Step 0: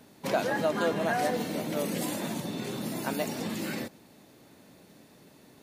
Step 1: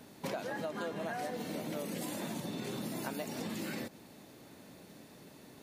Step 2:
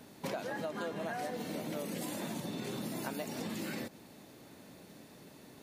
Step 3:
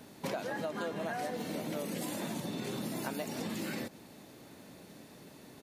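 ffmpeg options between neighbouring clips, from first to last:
-af "acompressor=threshold=0.0141:ratio=6,volume=1.12"
-af anull
-af "aresample=32000,aresample=44100,volume=1.19"

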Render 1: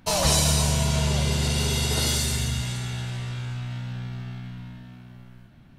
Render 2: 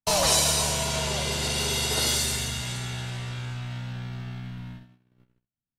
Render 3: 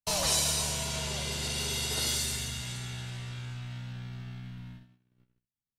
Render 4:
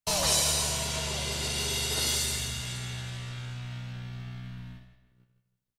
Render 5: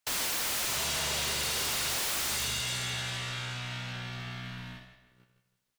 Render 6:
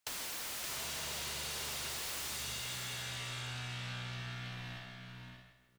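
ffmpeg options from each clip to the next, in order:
-filter_complex "[0:a]agate=range=0.00562:threshold=0.01:ratio=16:detection=peak,acrossover=split=320[s0][s1];[s0]acompressor=threshold=0.0224:ratio=6[s2];[s2][s1]amix=inputs=2:normalize=0,volume=1.12"
-af "equalizer=f=690:t=o:w=2.4:g=-4.5,volume=0.562"
-filter_complex "[0:a]asplit=2[s0][s1];[s1]adelay=161,lowpass=f=4400:p=1,volume=0.316,asplit=2[s2][s3];[s3]adelay=161,lowpass=f=4400:p=1,volume=0.43,asplit=2[s4][s5];[s5]adelay=161,lowpass=f=4400:p=1,volume=0.43,asplit=2[s6][s7];[s7]adelay=161,lowpass=f=4400:p=1,volume=0.43,asplit=2[s8][s9];[s9]adelay=161,lowpass=f=4400:p=1,volume=0.43[s10];[s0][s2][s4][s6][s8][s10]amix=inputs=6:normalize=0,volume=1.26"
-filter_complex "[0:a]aeval=exprs='(mod(20*val(0)+1,2)-1)/20':c=same,asplit=2[s0][s1];[s1]highpass=f=720:p=1,volume=6.31,asoftclip=type=tanh:threshold=0.0501[s2];[s0][s2]amix=inputs=2:normalize=0,lowpass=f=7900:p=1,volume=0.501"
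-filter_complex "[0:a]acompressor=threshold=0.00891:ratio=6,asplit=2[s0][s1];[s1]aecho=0:1:572:0.531[s2];[s0][s2]amix=inputs=2:normalize=0"

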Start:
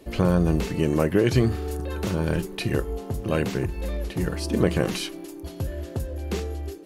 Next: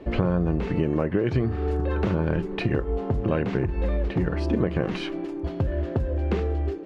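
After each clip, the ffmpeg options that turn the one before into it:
-af "acompressor=threshold=0.0447:ratio=6,lowpass=2100,volume=2.24"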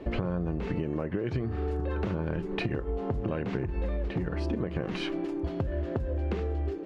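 -af "acompressor=threshold=0.0447:ratio=6"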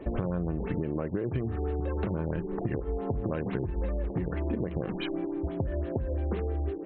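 -af "afftfilt=real='re*lt(b*sr/1024,890*pow(4300/890,0.5+0.5*sin(2*PI*6*pts/sr)))':imag='im*lt(b*sr/1024,890*pow(4300/890,0.5+0.5*sin(2*PI*6*pts/sr)))':win_size=1024:overlap=0.75"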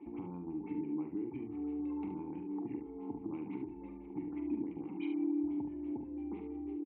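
-filter_complex "[0:a]asplit=3[s0][s1][s2];[s0]bandpass=f=300:t=q:w=8,volume=1[s3];[s1]bandpass=f=870:t=q:w=8,volume=0.501[s4];[s2]bandpass=f=2240:t=q:w=8,volume=0.355[s5];[s3][s4][s5]amix=inputs=3:normalize=0,asplit=2[s6][s7];[s7]aecho=0:1:45|72:0.376|0.422[s8];[s6][s8]amix=inputs=2:normalize=0"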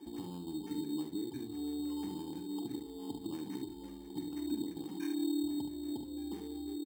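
-af "acrusher=samples=11:mix=1:aa=0.000001"

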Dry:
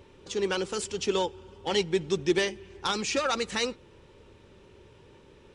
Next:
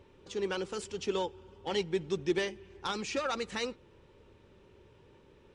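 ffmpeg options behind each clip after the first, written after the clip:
-af "highshelf=f=4200:g=-6.5,volume=0.562"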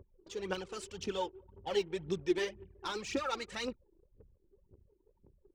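-af "aphaser=in_gain=1:out_gain=1:delay=3.3:decay=0.63:speed=1.9:type=triangular,anlmdn=0.00631,volume=0.562"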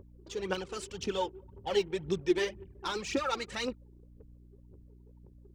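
-af "aeval=exprs='val(0)+0.00126*(sin(2*PI*60*n/s)+sin(2*PI*2*60*n/s)/2+sin(2*PI*3*60*n/s)/3+sin(2*PI*4*60*n/s)/4+sin(2*PI*5*60*n/s)/5)':c=same,volume=1.5"

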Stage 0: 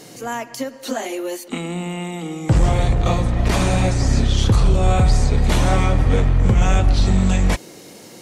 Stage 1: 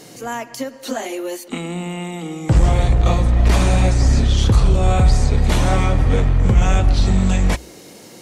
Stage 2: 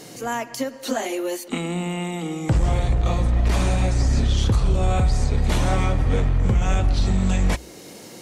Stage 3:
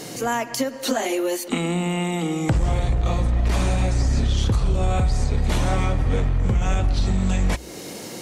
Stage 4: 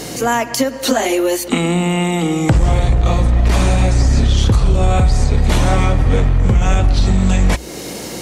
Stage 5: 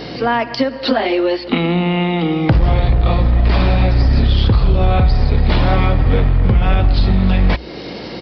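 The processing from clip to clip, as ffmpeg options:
-af "equalizer=f=61:t=o:w=0.23:g=8"
-af "alimiter=limit=0.282:level=0:latency=1:release=401"
-af "acompressor=threshold=0.0398:ratio=2,volume=2"
-af "aeval=exprs='val(0)+0.00316*(sin(2*PI*60*n/s)+sin(2*PI*2*60*n/s)/2+sin(2*PI*3*60*n/s)/3+sin(2*PI*4*60*n/s)/4+sin(2*PI*5*60*n/s)/5)':c=same,volume=2.37"
-af "aresample=11025,aresample=44100"

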